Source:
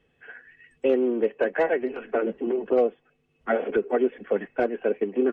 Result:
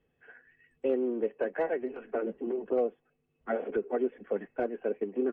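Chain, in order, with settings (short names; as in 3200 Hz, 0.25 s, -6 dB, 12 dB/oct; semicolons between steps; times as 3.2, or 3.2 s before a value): high shelf 2200 Hz -10 dB; gain -6.5 dB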